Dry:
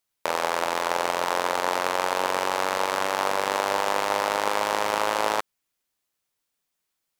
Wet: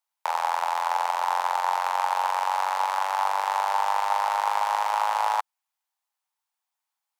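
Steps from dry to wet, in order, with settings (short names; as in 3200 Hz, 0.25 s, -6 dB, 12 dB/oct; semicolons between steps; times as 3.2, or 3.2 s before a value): ladder high-pass 770 Hz, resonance 65%; gain +4.5 dB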